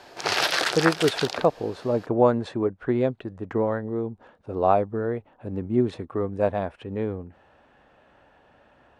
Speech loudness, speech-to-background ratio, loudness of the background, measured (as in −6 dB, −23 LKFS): −26.0 LKFS, −1.0 dB, −25.0 LKFS